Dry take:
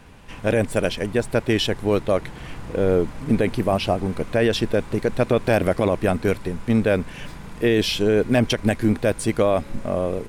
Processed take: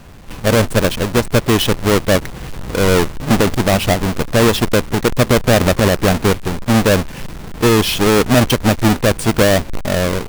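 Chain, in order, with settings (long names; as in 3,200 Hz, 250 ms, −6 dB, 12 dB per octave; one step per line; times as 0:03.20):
each half-wave held at its own peak
level +2.5 dB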